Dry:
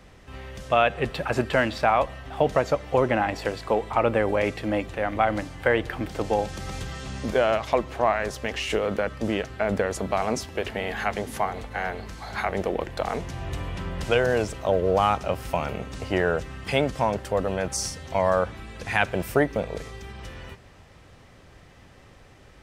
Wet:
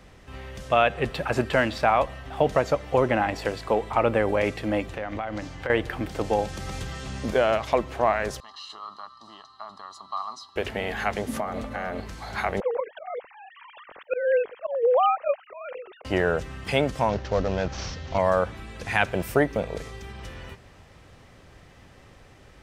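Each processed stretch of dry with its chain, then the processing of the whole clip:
4.96–5.70 s: compression 5:1, threshold -27 dBFS + resonant high shelf 7.9 kHz -7 dB, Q 1.5
8.40–10.56 s: two resonant band-passes 2.2 kHz, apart 1.8 oct + comb 1 ms, depth 85%
11.28–12.00 s: compression 3:1, threshold -30 dBFS + small resonant body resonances 240/580/1200 Hz, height 12 dB
12.60–16.05 s: formants replaced by sine waves + bass shelf 200 Hz +11.5 dB + slow attack 183 ms
17.09–18.18 s: CVSD coder 32 kbps + bass shelf 87 Hz +8.5 dB
whole clip: none

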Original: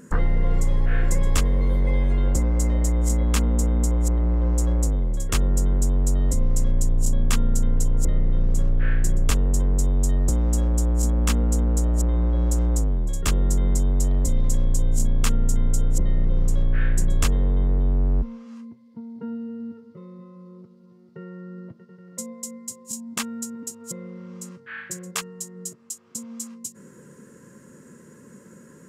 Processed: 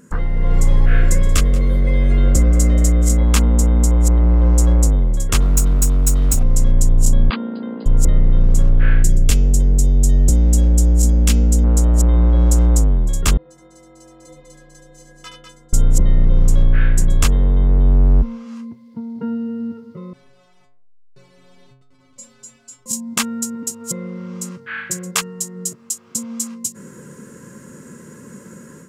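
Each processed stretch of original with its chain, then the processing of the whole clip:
0.86–3.18 s: Butterworth band-stop 900 Hz, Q 2.8 + delay 181 ms -18 dB
5.40–6.43 s: comb filter that takes the minimum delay 0.74 ms + treble shelf 5.3 kHz +11.5 dB
7.30–7.86 s: brick-wall FIR band-pass 180–4900 Hz + treble shelf 2.7 kHz -9 dB
9.03–11.64 s: peaking EQ 1.1 kHz -13 dB 1.1 oct + de-hum 258 Hz, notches 28
13.37–15.73 s: three-band isolator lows -22 dB, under 290 Hz, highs -19 dB, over 5.9 kHz + inharmonic resonator 150 Hz, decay 0.65 s, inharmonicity 0.03 + multi-tap echo 73/199 ms -6.5/-5.5 dB
20.13–22.86 s: send-on-delta sampling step -39.5 dBFS + low-pass 6.9 kHz + inharmonic resonator 130 Hz, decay 0.65 s, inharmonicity 0.008
whole clip: peaking EQ 420 Hz -2.5 dB 2 oct; band-stop 1.8 kHz, Q 21; level rider gain up to 10 dB

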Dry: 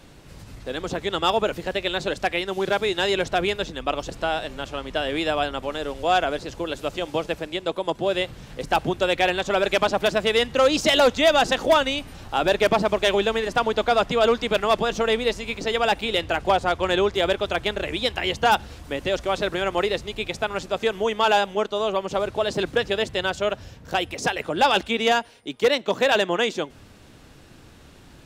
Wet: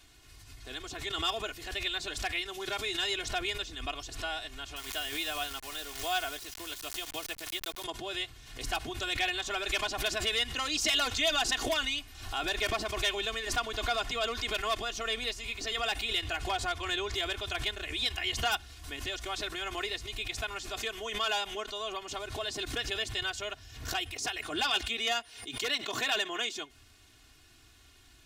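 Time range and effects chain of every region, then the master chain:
4.76–7.84 s: bass shelf 310 Hz -4 dB + word length cut 6-bit, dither none
whole clip: amplifier tone stack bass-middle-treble 5-5-5; comb 2.8 ms, depth 84%; swell ahead of each attack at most 78 dB/s

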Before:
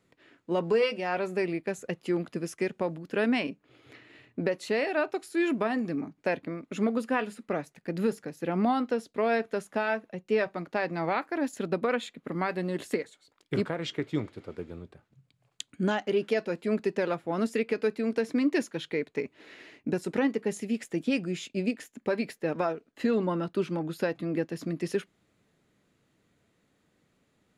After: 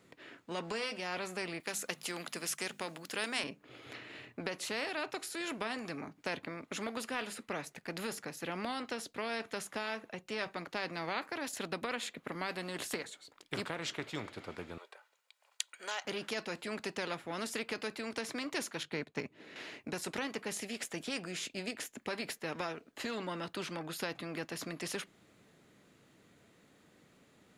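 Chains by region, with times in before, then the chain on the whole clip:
1.60–3.44 s: tilt EQ +3 dB/octave + hum notches 50/100/150/200/250 Hz
14.78–16.05 s: high-pass 680 Hz 24 dB/octave + comb 2.1 ms, depth 39%
18.83–19.56 s: peaking EQ 150 Hz +11 dB 2.7 oct + upward expansion, over -42 dBFS
whole clip: bass shelf 86 Hz -9.5 dB; spectrum-flattening compressor 2:1; trim +2.5 dB

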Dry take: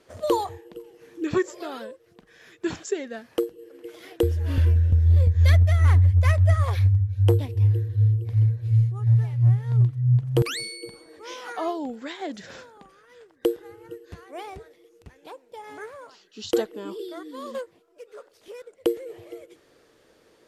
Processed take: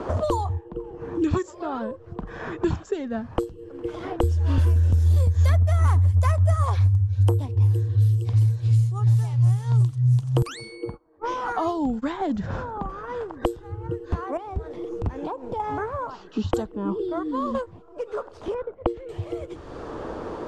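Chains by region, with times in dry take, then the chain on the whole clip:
10.51–12.33 s: treble shelf 4.9 kHz +12 dB + gate -42 dBFS, range -28 dB
14.37–15.60 s: compression 3:1, threshold -53 dBFS + bass shelf 350 Hz +10.5 dB
18.54–19.09 s: gate -52 dBFS, range -6 dB + low-pass 1.7 kHz
whole clip: level-controlled noise filter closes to 1.3 kHz, open at -14.5 dBFS; graphic EQ 125/500/1000/2000/4000/8000 Hz -4/-5/+6/-10/-3/+7 dB; three bands compressed up and down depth 100%; trim +3.5 dB

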